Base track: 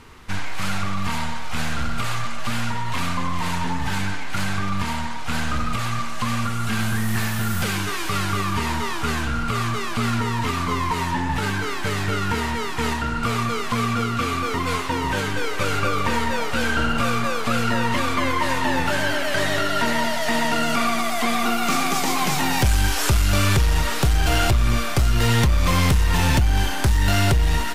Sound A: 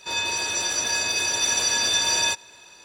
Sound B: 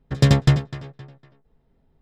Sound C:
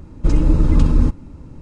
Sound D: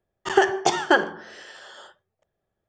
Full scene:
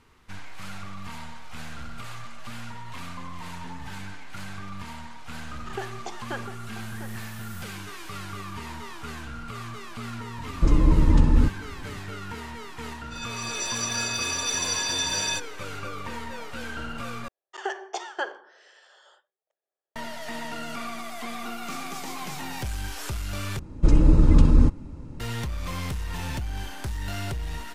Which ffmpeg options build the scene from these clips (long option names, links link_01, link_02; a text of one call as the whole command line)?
ffmpeg -i bed.wav -i cue0.wav -i cue1.wav -i cue2.wav -i cue3.wav -filter_complex "[4:a]asplit=2[link_01][link_02];[3:a]asplit=2[link_03][link_04];[0:a]volume=-13.5dB[link_05];[link_01]asplit=2[link_06][link_07];[link_07]adelay=699.7,volume=-9dB,highshelf=frequency=4000:gain=-15.7[link_08];[link_06][link_08]amix=inputs=2:normalize=0[link_09];[1:a]dynaudnorm=framelen=280:gausssize=3:maxgain=10dB[link_10];[link_02]highpass=frequency=410:width=0.5412,highpass=frequency=410:width=1.3066[link_11];[link_05]asplit=3[link_12][link_13][link_14];[link_12]atrim=end=17.284[link_15];[link_11]atrim=end=2.68,asetpts=PTS-STARTPTS,volume=-11.5dB[link_16];[link_13]atrim=start=19.956:end=23.594[link_17];[link_04]atrim=end=1.61,asetpts=PTS-STARTPTS,volume=-2dB[link_18];[link_14]atrim=start=25.196[link_19];[link_09]atrim=end=2.68,asetpts=PTS-STARTPTS,volume=-17dB,afade=type=in:duration=0.004:curve=hsin,afade=type=out:start_time=2.676:duration=0.004:curve=hsin,adelay=5400[link_20];[link_03]atrim=end=1.61,asetpts=PTS-STARTPTS,volume=-4dB,afade=type=in:duration=0.004:curve=hsin,afade=type=out:start_time=1.606:duration=0.004:curve=hsin,adelay=10380[link_21];[link_10]atrim=end=2.84,asetpts=PTS-STARTPTS,volume=-13.5dB,afade=type=in:duration=0.004:curve=hsin,afade=type=out:start_time=2.836:duration=0.004:curve=hsin,adelay=13050[link_22];[link_15][link_16]acrossfade=duration=0.004:curve1=hsin:curve2=hsin[link_23];[link_23][link_17]acrossfade=duration=0.004:curve1=hsin:curve2=hsin[link_24];[link_24][link_18]acrossfade=duration=0.004:curve1=hsin:curve2=hsin[link_25];[link_25][link_19]acrossfade=duration=0.004:curve1=hsin:curve2=hsin[link_26];[link_26][link_20][link_21][link_22]amix=inputs=4:normalize=0" out.wav